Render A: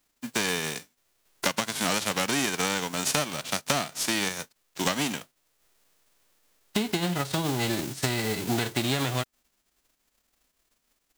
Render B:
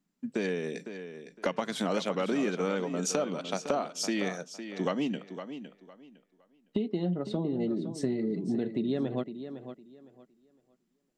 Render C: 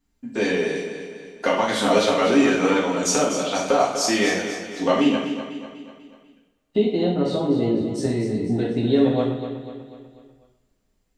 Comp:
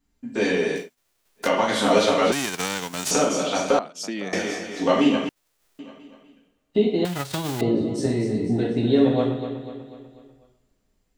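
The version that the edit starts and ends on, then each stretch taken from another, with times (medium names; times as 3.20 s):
C
0.82–1.44 s: from A, crossfade 0.16 s
2.32–3.11 s: from A
3.79–4.33 s: from B
5.29–5.79 s: from A
7.05–7.61 s: from A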